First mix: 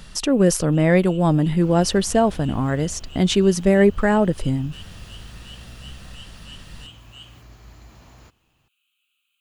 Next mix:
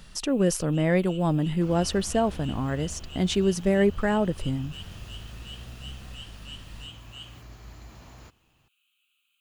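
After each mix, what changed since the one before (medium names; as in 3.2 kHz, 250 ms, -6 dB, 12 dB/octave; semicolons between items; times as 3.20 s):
speech -6.5 dB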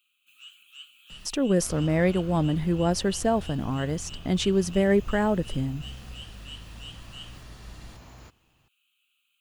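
speech: entry +1.10 s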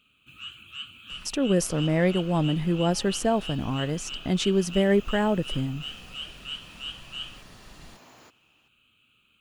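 first sound: remove differentiator; second sound: add high-pass 260 Hz 12 dB/octave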